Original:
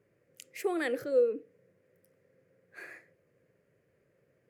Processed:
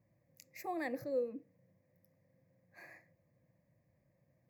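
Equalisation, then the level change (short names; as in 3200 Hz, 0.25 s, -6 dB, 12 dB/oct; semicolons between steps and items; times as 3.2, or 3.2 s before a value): bell 3000 Hz -11.5 dB 2.6 oct; fixed phaser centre 2100 Hz, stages 8; +3.0 dB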